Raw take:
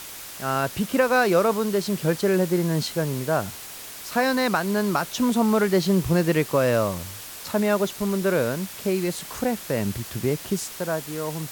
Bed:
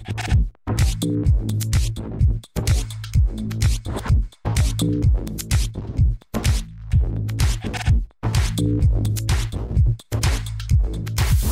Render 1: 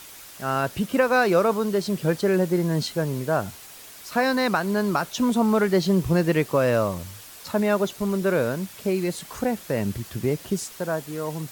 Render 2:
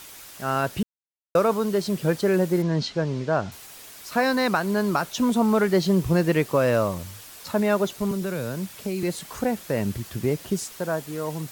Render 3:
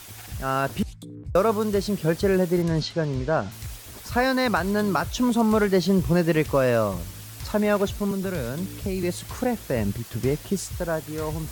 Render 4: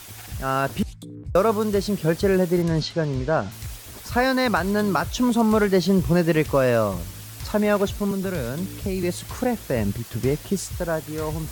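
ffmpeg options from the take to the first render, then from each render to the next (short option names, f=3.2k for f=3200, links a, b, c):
-af "afftdn=nr=6:nf=-39"
-filter_complex "[0:a]asettb=1/sr,asplit=3[a][b][c];[a]atrim=end=2.624[d];[b]atrim=start=2.62:end=3.52,asetpts=PTS-STARTPTS,afade=t=in:d=0.004:c=qsin,afade=t=out:st=0.896:d=0.004:c=qsin,lowpass=f=5.9k:w=0.5412,lowpass=f=5.9k:w=1.3066[e];[c]atrim=start=3.516[f];[d][e]acrossfade=d=0.004:c1=hsin:c2=qsin[g];[g][f]acrossfade=d=0.004:c1=qsin:c2=hsin,asettb=1/sr,asplit=3[h][i][j];[h]atrim=end=8.114[k];[i]atrim=start=8.11:end=9.03,asetpts=PTS-STARTPTS,afade=t=in:d=0.004:c=qsin,afade=t=out:st=0.916:d=0.004:c=qsin,acrossover=split=200|3000[l][m][n];[m]acompressor=threshold=-28dB:ratio=6:attack=3.2:release=140:knee=2.83:detection=peak[o];[l][o][n]amix=inputs=3:normalize=0[p];[j]atrim=start=9.026[q];[k][p]acrossfade=d=0.004:c1=hsin:c2=qsin[r];[r][q]acrossfade=d=0.004:c1=qsin:c2=hsin,asplit=3[s][t][u];[s]atrim=end=0.83,asetpts=PTS-STARTPTS,afade=t=out:st=0.826:d=0.004:c=hsin[v];[t]atrim=start=0.83:end=1.35,asetpts=PTS-STARTPTS,volume=0[w];[u]atrim=start=1.35,asetpts=PTS-STARTPTS,afade=t=in:d=0.004:c=hsin[x];[v][w][x]concat=n=3:v=0:a=1"
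-filter_complex "[1:a]volume=-18.5dB[a];[0:a][a]amix=inputs=2:normalize=0"
-af "volume=1.5dB"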